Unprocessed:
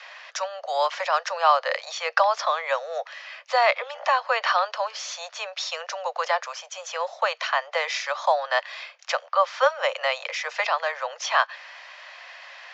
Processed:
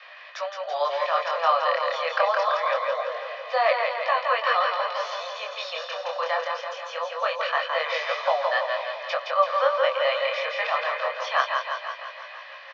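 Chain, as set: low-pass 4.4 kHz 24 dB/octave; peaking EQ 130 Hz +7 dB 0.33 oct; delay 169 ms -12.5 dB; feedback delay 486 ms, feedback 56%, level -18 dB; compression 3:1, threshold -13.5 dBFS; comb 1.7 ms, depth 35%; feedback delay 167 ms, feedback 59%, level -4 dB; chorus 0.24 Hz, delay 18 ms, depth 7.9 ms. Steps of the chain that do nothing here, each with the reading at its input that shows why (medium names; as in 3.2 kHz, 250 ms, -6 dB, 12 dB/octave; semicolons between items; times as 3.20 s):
peaking EQ 130 Hz: input has nothing below 400 Hz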